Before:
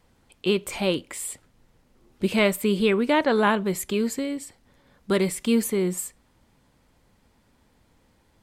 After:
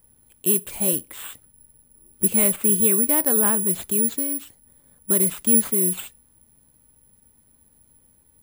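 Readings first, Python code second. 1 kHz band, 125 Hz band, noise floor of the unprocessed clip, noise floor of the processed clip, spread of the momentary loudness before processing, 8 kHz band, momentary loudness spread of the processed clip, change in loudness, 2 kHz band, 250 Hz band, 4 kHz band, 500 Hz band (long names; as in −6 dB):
−7.0 dB, −1.0 dB, −64 dBFS, −60 dBFS, 12 LU, +14.5 dB, 10 LU, +5.5 dB, −8.0 dB, −2.0 dB, −7.0 dB, −4.5 dB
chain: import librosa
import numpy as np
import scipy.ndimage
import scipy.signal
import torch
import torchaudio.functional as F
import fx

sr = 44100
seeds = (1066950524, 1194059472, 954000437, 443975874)

y = fx.low_shelf(x, sr, hz=410.0, db=9.5)
y = (np.kron(y[::4], np.eye(4)[0]) * 4)[:len(y)]
y = y * 10.0 ** (-9.0 / 20.0)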